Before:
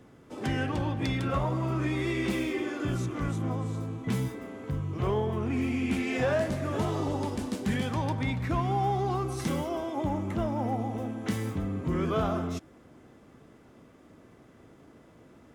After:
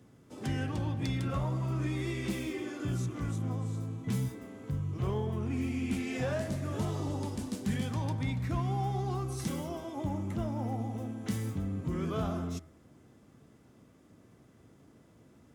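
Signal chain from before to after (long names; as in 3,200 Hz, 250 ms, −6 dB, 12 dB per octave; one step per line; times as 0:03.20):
high-pass filter 57 Hz
bass and treble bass +7 dB, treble +7 dB
hum removal 80.75 Hz, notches 29
level −7.5 dB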